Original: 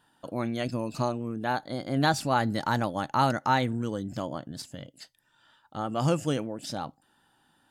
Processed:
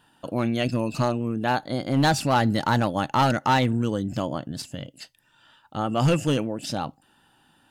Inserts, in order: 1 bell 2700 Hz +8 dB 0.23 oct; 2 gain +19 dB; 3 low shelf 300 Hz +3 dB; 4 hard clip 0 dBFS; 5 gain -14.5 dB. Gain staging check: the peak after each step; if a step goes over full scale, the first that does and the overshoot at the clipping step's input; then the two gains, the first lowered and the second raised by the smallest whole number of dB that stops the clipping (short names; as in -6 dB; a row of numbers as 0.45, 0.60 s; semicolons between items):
-12.0, +7.0, +8.5, 0.0, -14.5 dBFS; step 2, 8.5 dB; step 2 +10 dB, step 5 -5.5 dB